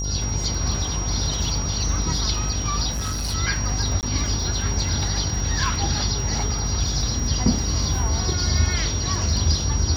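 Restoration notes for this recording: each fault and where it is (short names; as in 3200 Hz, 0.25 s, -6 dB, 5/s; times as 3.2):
buzz 50 Hz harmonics 23 -27 dBFS
crackle 36/s -30 dBFS
tone 5700 Hz -29 dBFS
2.91–3.35 clipped -22.5 dBFS
4.01–4.03 gap 18 ms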